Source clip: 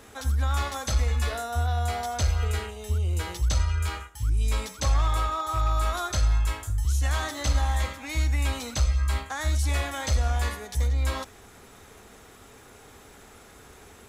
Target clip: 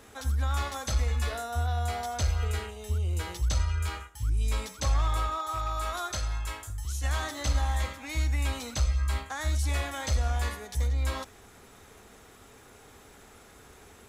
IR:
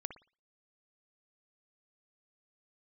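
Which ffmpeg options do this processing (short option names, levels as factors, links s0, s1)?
-filter_complex "[0:a]asettb=1/sr,asplit=3[s0][s1][s2];[s0]atrim=end=5.384[s3];[s1]atrim=start=5.38:end=7.04,asetpts=PTS-STARTPTS,afade=t=in:d=0.004:c=qsin,afade=t=out:st=1.656:d=0.004:c=qsin,lowshelf=f=260:g=-7[s4];[s2]atrim=start=7.036[s5];[s3][s4]acrossfade=d=0.004:c1=hsin:c2=qsin[s6];[s6][s5]acrossfade=d=0.004:c1=qsin:c2=hsin,volume=0.708"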